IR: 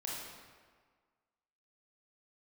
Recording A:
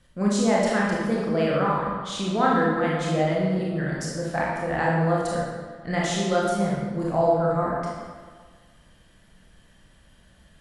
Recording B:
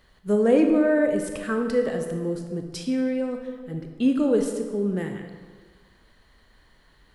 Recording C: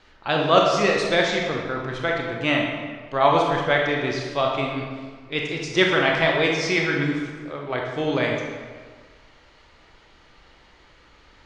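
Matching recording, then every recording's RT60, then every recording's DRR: A; 1.6, 1.6, 1.6 seconds; −5.0, 4.0, −0.5 decibels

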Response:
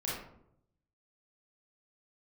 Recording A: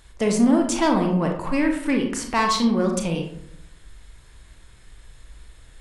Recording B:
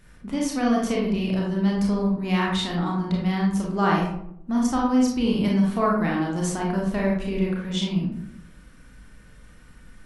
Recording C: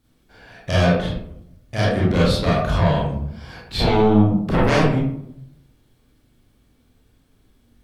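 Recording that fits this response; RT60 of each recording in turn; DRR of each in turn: C; 0.75, 0.75, 0.75 seconds; 2.5, −3.0, −7.0 decibels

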